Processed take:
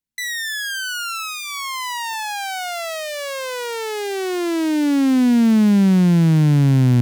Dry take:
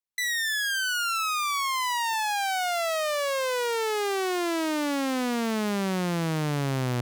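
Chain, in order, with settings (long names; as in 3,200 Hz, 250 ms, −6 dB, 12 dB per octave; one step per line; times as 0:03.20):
low shelf with overshoot 340 Hz +11 dB, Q 1.5
notch filter 1,200 Hz, Q 6
level +2.5 dB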